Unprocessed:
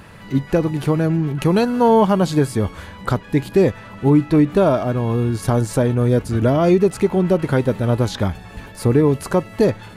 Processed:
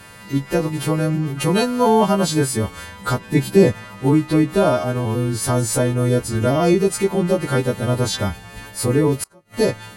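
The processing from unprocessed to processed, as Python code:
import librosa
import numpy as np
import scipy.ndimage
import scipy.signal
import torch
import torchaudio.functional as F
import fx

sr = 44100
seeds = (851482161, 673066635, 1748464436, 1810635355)

y = fx.freq_snap(x, sr, grid_st=2)
y = fx.peak_eq(y, sr, hz=170.0, db=6.5, octaves=2.2, at=(3.2, 3.85))
y = fx.gate_flip(y, sr, shuts_db=-13.0, range_db=-31, at=(9.14, 9.54))
y = y * 10.0 ** (-1.0 / 20.0)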